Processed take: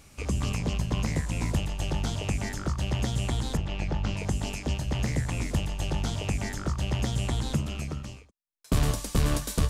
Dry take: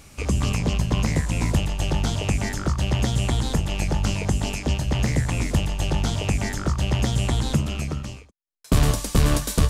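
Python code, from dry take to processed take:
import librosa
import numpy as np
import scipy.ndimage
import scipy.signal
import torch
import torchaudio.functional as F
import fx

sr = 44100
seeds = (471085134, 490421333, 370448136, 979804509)

y = fx.lowpass(x, sr, hz=4000.0, slope=12, at=(3.57, 4.17))
y = y * 10.0 ** (-6.0 / 20.0)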